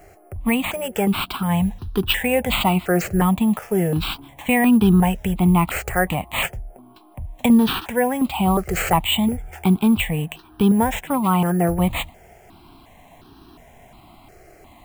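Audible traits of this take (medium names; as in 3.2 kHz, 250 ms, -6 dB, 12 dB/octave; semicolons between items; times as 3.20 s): aliases and images of a low sample rate 11 kHz, jitter 0%; notches that jump at a steady rate 2.8 Hz 980–2100 Hz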